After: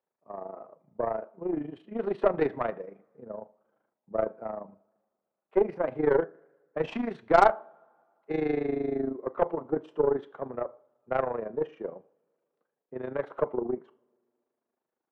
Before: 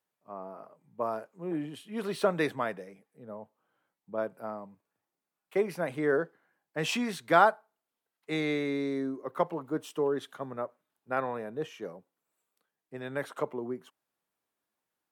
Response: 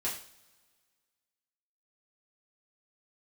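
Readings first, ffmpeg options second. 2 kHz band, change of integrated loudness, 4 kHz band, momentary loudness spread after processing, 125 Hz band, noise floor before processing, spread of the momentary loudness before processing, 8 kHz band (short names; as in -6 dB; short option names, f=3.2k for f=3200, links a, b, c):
-4.0 dB, +2.0 dB, -10.5 dB, 17 LU, -1.0 dB, under -85 dBFS, 17 LU, under -10 dB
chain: -filter_complex "[0:a]lowpass=2.2k,tremolo=f=26:d=0.75,asplit=2[a][b];[1:a]atrim=start_sample=2205[c];[b][c]afir=irnorm=-1:irlink=0,volume=-15.5dB[d];[a][d]amix=inputs=2:normalize=0,aeval=exprs='0.447*(cos(1*acos(clip(val(0)/0.447,-1,1)))-cos(1*PI/2))+0.0447*(cos(8*acos(clip(val(0)/0.447,-1,1)))-cos(8*PI/2))':c=same,equalizer=f=480:w=0.45:g=12.5,volume=-5.5dB"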